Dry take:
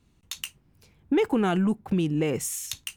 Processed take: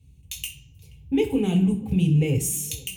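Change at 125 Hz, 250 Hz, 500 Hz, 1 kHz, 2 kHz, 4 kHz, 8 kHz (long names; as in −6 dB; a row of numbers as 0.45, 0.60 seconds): +8.5, +2.5, −0.5, −9.5, −2.0, +1.0, +4.0 decibels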